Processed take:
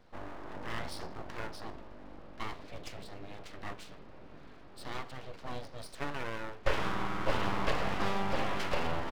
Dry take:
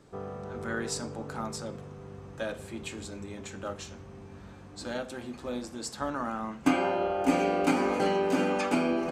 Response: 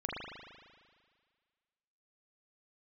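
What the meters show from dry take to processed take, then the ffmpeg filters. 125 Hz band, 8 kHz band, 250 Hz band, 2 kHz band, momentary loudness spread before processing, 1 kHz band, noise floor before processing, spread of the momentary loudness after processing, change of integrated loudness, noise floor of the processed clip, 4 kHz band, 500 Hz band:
-1.5 dB, -11.5 dB, -12.0 dB, -2.5 dB, 18 LU, -4.5 dB, -48 dBFS, 19 LU, -6.5 dB, -50 dBFS, -1.5 dB, -8.5 dB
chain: -af "aresample=11025,aresample=44100,aeval=exprs='abs(val(0))':c=same,volume=-2.5dB"

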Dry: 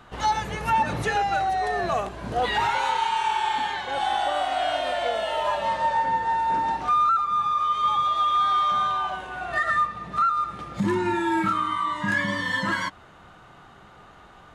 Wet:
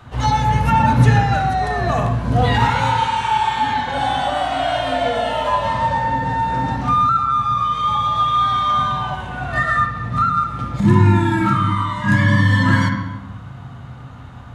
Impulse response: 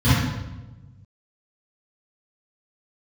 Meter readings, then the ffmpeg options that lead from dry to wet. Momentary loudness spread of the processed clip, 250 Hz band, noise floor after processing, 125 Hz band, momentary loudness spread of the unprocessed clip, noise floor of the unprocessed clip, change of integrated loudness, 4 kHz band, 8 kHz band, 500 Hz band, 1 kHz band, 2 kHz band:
9 LU, +11.0 dB, -36 dBFS, +21.0 dB, 6 LU, -50 dBFS, +6.5 dB, +4.5 dB, n/a, +5.0 dB, +5.0 dB, +5.5 dB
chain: -filter_complex "[0:a]asplit=2[a][b];[1:a]atrim=start_sample=2205[c];[b][c]afir=irnorm=-1:irlink=0,volume=-23dB[d];[a][d]amix=inputs=2:normalize=0,volume=4dB"

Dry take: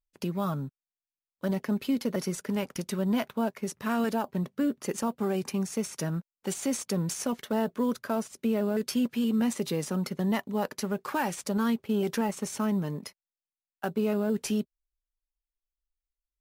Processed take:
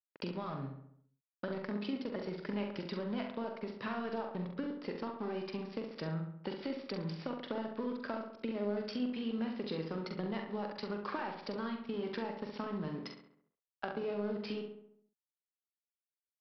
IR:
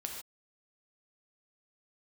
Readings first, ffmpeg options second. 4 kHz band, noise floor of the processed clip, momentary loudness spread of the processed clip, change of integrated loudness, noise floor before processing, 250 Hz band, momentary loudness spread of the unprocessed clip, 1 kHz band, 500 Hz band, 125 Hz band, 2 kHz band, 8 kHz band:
-7.0 dB, under -85 dBFS, 5 LU, -9.5 dB, under -85 dBFS, -10.5 dB, 6 LU, -8.0 dB, -7.0 dB, -9.5 dB, -6.5 dB, under -30 dB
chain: -filter_complex "[0:a]highpass=120,equalizer=f=200:w=2.1:g=-4.5,acompressor=threshold=-36dB:ratio=10,aresample=11025,aeval=exprs='sgn(val(0))*max(abs(val(0))-0.00168,0)':c=same,aresample=44100,asplit=2[a][b];[b]adelay=44,volume=-6.5dB[c];[a][c]amix=inputs=2:normalize=0,asplit=2[d][e];[e]adelay=68,lowpass=f=2.5k:p=1,volume=-5.5dB,asplit=2[f][g];[g]adelay=68,lowpass=f=2.5k:p=1,volume=0.54,asplit=2[h][i];[i]adelay=68,lowpass=f=2.5k:p=1,volume=0.54,asplit=2[j][k];[k]adelay=68,lowpass=f=2.5k:p=1,volume=0.54,asplit=2[l][m];[m]adelay=68,lowpass=f=2.5k:p=1,volume=0.54,asplit=2[n][o];[o]adelay=68,lowpass=f=2.5k:p=1,volume=0.54,asplit=2[p][q];[q]adelay=68,lowpass=f=2.5k:p=1,volume=0.54[r];[f][h][j][l][n][p][r]amix=inputs=7:normalize=0[s];[d][s]amix=inputs=2:normalize=0,volume=1dB"

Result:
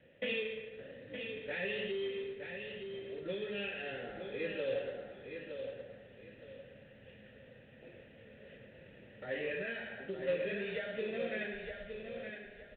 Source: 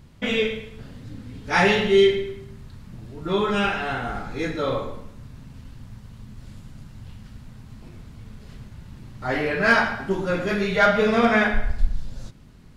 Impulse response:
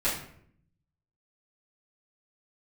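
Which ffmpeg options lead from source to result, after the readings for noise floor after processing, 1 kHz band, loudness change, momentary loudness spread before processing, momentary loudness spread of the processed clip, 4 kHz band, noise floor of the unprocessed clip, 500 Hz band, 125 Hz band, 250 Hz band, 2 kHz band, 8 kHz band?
-58 dBFS, -28.0 dB, -18.0 dB, 22 LU, 20 LU, -15.5 dB, -47 dBFS, -14.5 dB, -21.0 dB, -20.0 dB, -17.0 dB, under -35 dB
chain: -filter_complex "[0:a]adynamicequalizer=threshold=0.0178:dfrequency=400:dqfactor=8:tfrequency=400:tqfactor=8:attack=5:release=100:ratio=0.375:range=2.5:mode=boostabove:tftype=bell,alimiter=limit=-14.5dB:level=0:latency=1:release=206,acrossover=split=240|3000[a][b][c];[b]acompressor=threshold=-40dB:ratio=5[d];[a][d][c]amix=inputs=3:normalize=0,asplit=3[e][f][g];[e]bandpass=f=530:t=q:w=8,volume=0dB[h];[f]bandpass=f=1.84k:t=q:w=8,volume=-6dB[i];[g]bandpass=f=2.48k:t=q:w=8,volume=-9dB[j];[h][i][j]amix=inputs=3:normalize=0,aresample=8000,acrusher=bits=5:mode=log:mix=0:aa=0.000001,aresample=44100,aecho=1:1:916|1832|2748:0.447|0.121|0.0326,volume=8dB"

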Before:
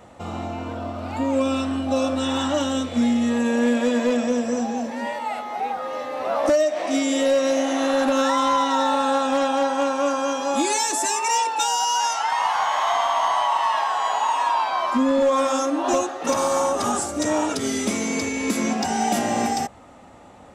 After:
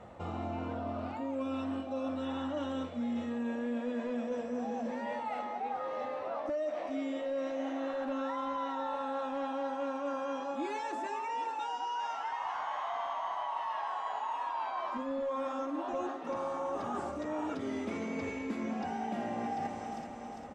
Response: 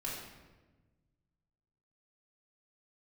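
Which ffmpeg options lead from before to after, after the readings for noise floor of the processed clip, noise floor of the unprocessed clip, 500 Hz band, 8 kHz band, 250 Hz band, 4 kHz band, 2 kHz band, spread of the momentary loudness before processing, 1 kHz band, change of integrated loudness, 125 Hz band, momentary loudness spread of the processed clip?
-42 dBFS, -45 dBFS, -14.0 dB, -31.0 dB, -13.5 dB, -21.0 dB, -15.5 dB, 8 LU, -13.5 dB, -14.5 dB, n/a, 2 LU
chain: -filter_complex "[0:a]aecho=1:1:401|802|1203|1604|2005:0.178|0.096|0.0519|0.028|0.0151,acrossover=split=3500[a][b];[b]acompressor=threshold=-40dB:ratio=4:attack=1:release=60[c];[a][c]amix=inputs=2:normalize=0,flanger=delay=1.4:depth=5.4:regen=-74:speed=0.33:shape=triangular,areverse,acompressor=threshold=-34dB:ratio=6,areverse,aemphasis=mode=reproduction:type=75fm"

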